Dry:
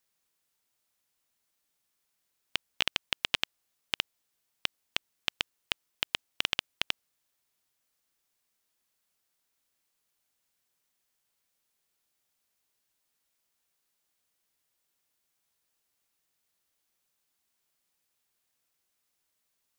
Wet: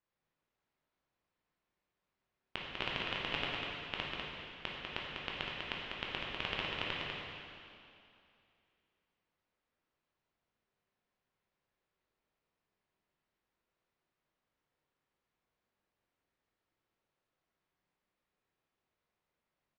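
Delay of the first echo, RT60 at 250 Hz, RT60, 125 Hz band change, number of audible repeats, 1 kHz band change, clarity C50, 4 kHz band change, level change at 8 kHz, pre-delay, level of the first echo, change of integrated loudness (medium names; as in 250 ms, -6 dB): 197 ms, 2.6 s, 2.6 s, +5.0 dB, 1, +1.0 dB, -3.0 dB, -7.5 dB, under -15 dB, 6 ms, -4.5 dB, -6.0 dB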